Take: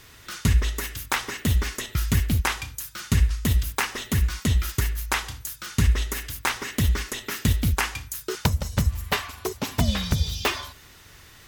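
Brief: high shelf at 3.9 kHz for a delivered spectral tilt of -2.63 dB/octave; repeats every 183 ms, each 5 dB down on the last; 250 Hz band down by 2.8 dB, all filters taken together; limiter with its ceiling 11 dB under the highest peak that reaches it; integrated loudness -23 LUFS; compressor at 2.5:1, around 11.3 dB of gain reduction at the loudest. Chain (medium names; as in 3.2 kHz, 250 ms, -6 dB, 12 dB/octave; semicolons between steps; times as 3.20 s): peaking EQ 250 Hz -4 dB; treble shelf 3.9 kHz +7 dB; compression 2.5:1, threshold -33 dBFS; peak limiter -22.5 dBFS; feedback delay 183 ms, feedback 56%, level -5 dB; trim +10 dB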